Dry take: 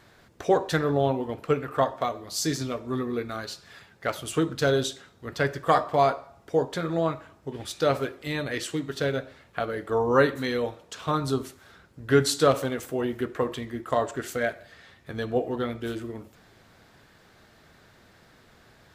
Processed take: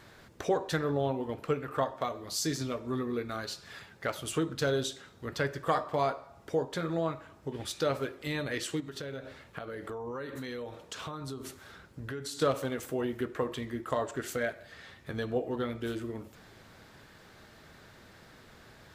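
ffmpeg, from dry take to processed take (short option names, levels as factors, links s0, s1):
-filter_complex "[0:a]asettb=1/sr,asplit=3[s0][s1][s2];[s0]atrim=end=8.804[s3];[s1]atrim=start=8.8:end=12.42,asetpts=PTS-STARTPTS,afade=t=in:d=0.004:c=qsin,afade=t=out:st=3.616:d=0.004:c=qsin,acompressor=threshold=0.0158:ratio=5:attack=3.2:release=140:knee=1:detection=peak[s4];[s2]atrim=start=12.416[s5];[s3][s4]acrossfade=d=0.004:c1=hsin:c2=qsin[s6];[s6][s5]acrossfade=d=0.004:c1=qsin:c2=hsin,bandreject=f=710:w=23,acompressor=threshold=0.00891:ratio=1.5,volume=1.19"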